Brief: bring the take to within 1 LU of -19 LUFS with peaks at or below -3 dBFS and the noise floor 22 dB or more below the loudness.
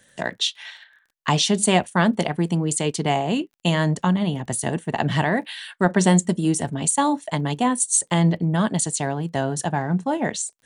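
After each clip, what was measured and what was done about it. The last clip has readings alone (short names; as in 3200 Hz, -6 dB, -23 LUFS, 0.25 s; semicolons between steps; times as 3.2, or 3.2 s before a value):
ticks 26/s; loudness -22.0 LUFS; peak -3.0 dBFS; loudness target -19.0 LUFS
-> de-click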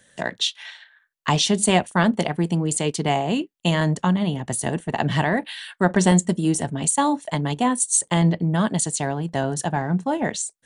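ticks 0.094/s; loudness -22.0 LUFS; peak -3.0 dBFS; loudness target -19.0 LUFS
-> gain +3 dB; limiter -3 dBFS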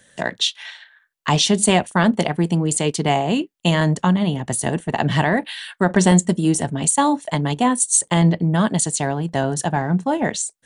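loudness -19.0 LUFS; peak -3.0 dBFS; noise floor -62 dBFS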